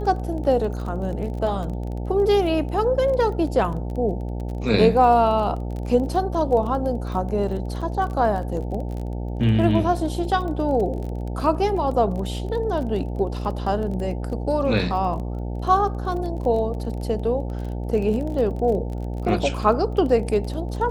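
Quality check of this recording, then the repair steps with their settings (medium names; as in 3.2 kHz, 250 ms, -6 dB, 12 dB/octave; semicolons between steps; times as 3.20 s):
buzz 60 Hz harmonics 15 -28 dBFS
crackle 26 per s -30 dBFS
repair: de-click; de-hum 60 Hz, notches 15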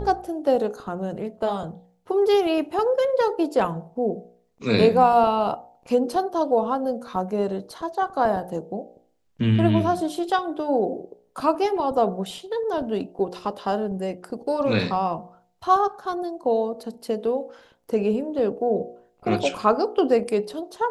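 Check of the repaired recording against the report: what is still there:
nothing left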